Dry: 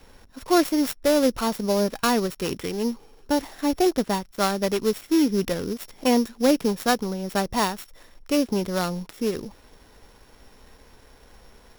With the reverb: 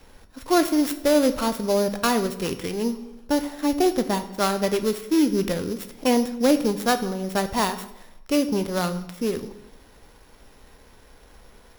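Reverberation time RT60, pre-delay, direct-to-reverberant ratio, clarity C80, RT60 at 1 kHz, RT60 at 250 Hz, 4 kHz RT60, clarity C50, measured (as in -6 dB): 0.90 s, 9 ms, 9.0 dB, 15.0 dB, 0.85 s, 0.95 s, 0.65 s, 13.0 dB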